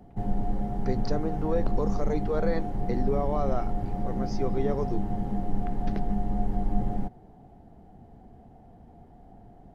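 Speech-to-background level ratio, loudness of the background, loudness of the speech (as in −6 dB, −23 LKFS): −0.5 dB, −32.0 LKFS, −32.5 LKFS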